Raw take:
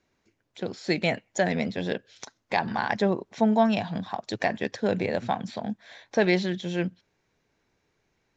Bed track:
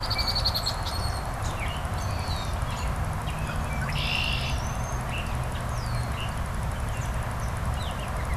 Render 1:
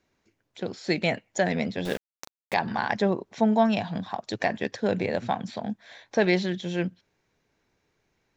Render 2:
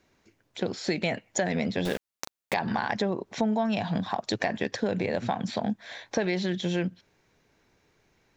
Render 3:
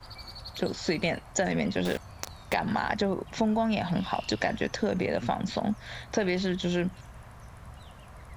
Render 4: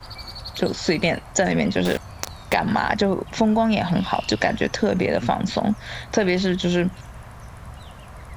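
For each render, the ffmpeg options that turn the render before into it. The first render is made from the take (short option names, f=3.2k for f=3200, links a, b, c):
-filter_complex "[0:a]asettb=1/sr,asplit=3[a][b][c];[a]atrim=end=1.854[d];[b]atrim=start=1.85:end=2.54,asetpts=PTS-STARTPTS,afade=t=in:d=0.004:c=qsin,afade=t=out:st=0.686:d=0.004:c=qsin,aeval=exprs='val(0)*gte(abs(val(0)),0.0224)':c=same[e];[c]atrim=start=2.536[f];[d][e]acrossfade=d=0.004:c1=hsin:c2=qsin[g];[g][f]acrossfade=d=0.004:c1=qsin:c2=hsin"
-filter_complex "[0:a]asplit=2[a][b];[b]alimiter=limit=-20dB:level=0:latency=1:release=33,volume=0dB[c];[a][c]amix=inputs=2:normalize=0,acompressor=threshold=-24dB:ratio=5"
-filter_complex "[1:a]volume=-17.5dB[a];[0:a][a]amix=inputs=2:normalize=0"
-af "volume=7.5dB"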